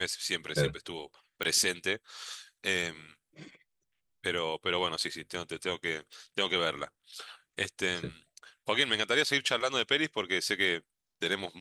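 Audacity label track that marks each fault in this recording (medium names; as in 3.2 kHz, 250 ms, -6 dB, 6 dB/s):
1.430000	1.430000	pop -17 dBFS
6.130000	6.130000	pop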